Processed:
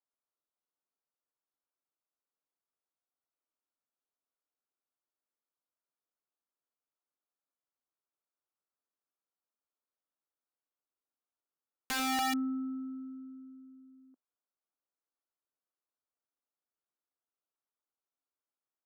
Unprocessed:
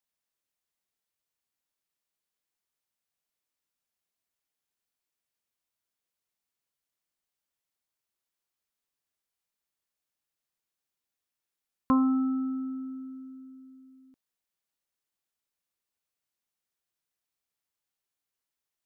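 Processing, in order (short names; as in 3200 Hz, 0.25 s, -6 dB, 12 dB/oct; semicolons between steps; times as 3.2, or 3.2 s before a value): elliptic band-pass 250–1400 Hz, stop band 40 dB; wrapped overs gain 25 dB; added harmonics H 2 -35 dB, 3 -37 dB, 4 -45 dB, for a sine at -25 dBFS; gain -2.5 dB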